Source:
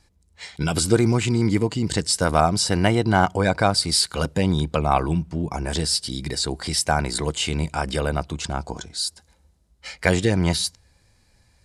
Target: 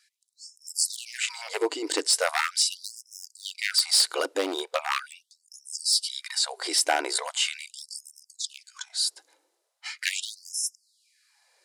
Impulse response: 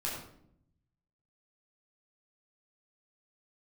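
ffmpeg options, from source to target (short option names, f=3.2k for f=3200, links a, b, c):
-af "aeval=exprs='0.251*(abs(mod(val(0)/0.251+3,4)-2)-1)':c=same,afftfilt=real='re*gte(b*sr/1024,260*pow(5200/260,0.5+0.5*sin(2*PI*0.4*pts/sr)))':imag='im*gte(b*sr/1024,260*pow(5200/260,0.5+0.5*sin(2*PI*0.4*pts/sr)))':win_size=1024:overlap=0.75"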